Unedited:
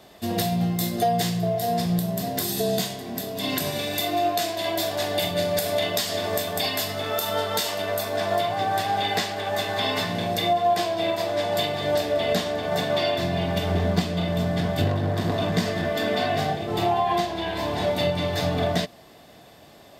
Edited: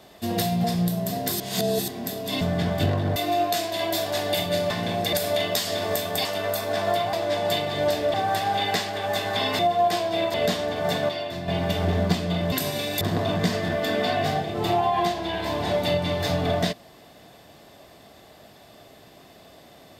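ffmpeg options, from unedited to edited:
-filter_complex "[0:a]asplit=17[a][b][c][d][e][f][g][h][i][j][k][l][m][n][o][p][q];[a]atrim=end=0.642[r];[b]atrim=start=1.748:end=2.512[s];[c]atrim=start=2.508:end=2.992,asetpts=PTS-STARTPTS,areverse[t];[d]atrim=start=2.988:end=3.522[u];[e]atrim=start=14.388:end=15.142[v];[f]atrim=start=4.008:end=5.552[w];[g]atrim=start=10.018:end=10.452[x];[h]atrim=start=5.548:end=6.672[y];[i]atrim=start=7.688:end=8.572[z];[j]atrim=start=11.198:end=12.212[aa];[k]atrim=start=8.568:end=10.022[ab];[l]atrim=start=10.448:end=11.202[ac];[m]atrim=start=12.208:end=12.962[ad];[n]atrim=start=12.958:end=13.352,asetpts=PTS-STARTPTS,volume=-7dB[ae];[o]atrim=start=13.348:end=14.392[af];[p]atrim=start=3.518:end=4.012[ag];[q]atrim=start=15.138[ah];[r][s]acrossfade=d=0.004:c1=hsin:c2=hsin[ai];[ai][t]acrossfade=d=0.004:c1=hsin:c2=hsin[aj];[aj][u]acrossfade=d=0.004:c1=hsin:c2=hsin[ak];[ak][v]acrossfade=d=0.004:c1=hsin:c2=hsin[al];[al][w]acrossfade=d=0.004:c1=hsin:c2=hsin[am];[am][x]acrossfade=d=0.004:c1=hsin:c2=hsin[an];[an][y]acrossfade=d=0.004:c1=hsin:c2=hsin[ao];[ao][z]acrossfade=d=0.004:c1=hsin:c2=hsin[ap];[ap][aa]acrossfade=d=0.004:c1=hsin:c2=hsin[aq];[aq][ab]acrossfade=d=0.004:c1=hsin:c2=hsin[ar];[ar][ac]acrossfade=d=0.004:c1=hsin:c2=hsin[as];[as][ad]acrossfade=d=0.004:c1=hsin:c2=hsin[at];[at][ae]acrossfade=d=0.004:c1=hsin:c2=hsin[au];[au][af]acrossfade=d=0.004:c1=hsin:c2=hsin[av];[av][ag]acrossfade=d=0.004:c1=hsin:c2=hsin[aw];[aw][ah]acrossfade=d=0.004:c1=hsin:c2=hsin"

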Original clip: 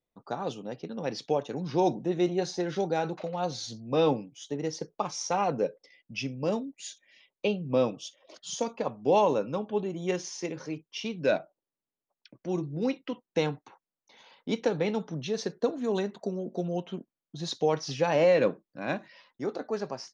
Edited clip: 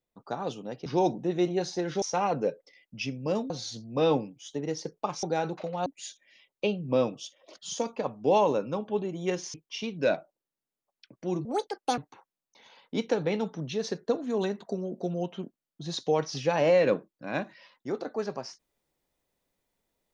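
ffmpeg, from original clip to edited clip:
-filter_complex "[0:a]asplit=9[a][b][c][d][e][f][g][h][i];[a]atrim=end=0.862[j];[b]atrim=start=1.668:end=2.832[k];[c]atrim=start=5.188:end=6.672[l];[d]atrim=start=3.458:end=5.192[m];[e]atrim=start=2.828:end=3.462[n];[f]atrim=start=6.668:end=10.352[o];[g]atrim=start=10.758:end=12.674[p];[h]atrim=start=12.67:end=13.52,asetpts=PTS-STARTPTS,asetrate=71001,aresample=44100[q];[i]atrim=start=13.516[r];[j][k]acrossfade=d=0.004:c1=hsin:c2=hsin[s];[s][l]acrossfade=d=0.004:c1=hsin:c2=hsin[t];[t][m]acrossfade=d=0.004:c1=hsin:c2=hsin[u];[u][n]acrossfade=d=0.004:c1=hsin:c2=hsin[v];[v][o]acrossfade=d=0.004:c1=hsin:c2=hsin[w];[w][p]acrossfade=d=0.004:c1=hsin:c2=hsin[x];[x][q]acrossfade=d=0.004:c1=hsin:c2=hsin[y];[y][r]acrossfade=d=0.004:c1=hsin:c2=hsin"

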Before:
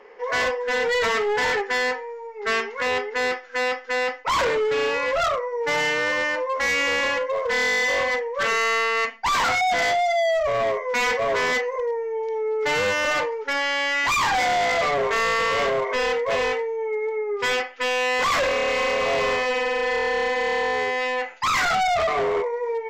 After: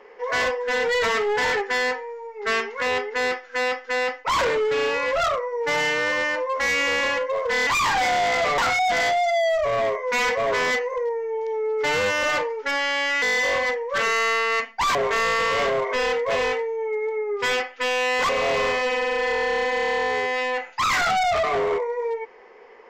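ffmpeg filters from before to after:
-filter_complex "[0:a]asplit=6[a][b][c][d][e][f];[a]atrim=end=7.672[g];[b]atrim=start=14.038:end=14.952[h];[c]atrim=start=9.398:end=14.042[i];[d]atrim=start=7.668:end=9.402[j];[e]atrim=start=14.948:end=18.292[k];[f]atrim=start=18.928[l];[g][h]acrossfade=d=0.004:c1=hsin:c2=hsin[m];[m][i]acrossfade=d=0.004:c1=hsin:c2=hsin[n];[n][j]acrossfade=d=0.004:c1=hsin:c2=hsin[o];[o][k]acrossfade=d=0.004:c1=hsin:c2=hsin[p];[p][l]acrossfade=d=0.004:c1=hsin:c2=hsin"

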